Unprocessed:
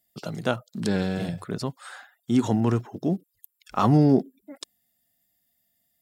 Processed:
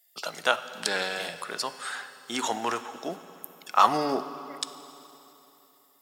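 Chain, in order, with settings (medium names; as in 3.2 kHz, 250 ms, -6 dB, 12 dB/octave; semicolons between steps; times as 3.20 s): high-pass 920 Hz 12 dB/octave; on a send: reverberation RT60 3.3 s, pre-delay 3 ms, DRR 11 dB; on the sum: trim +7.5 dB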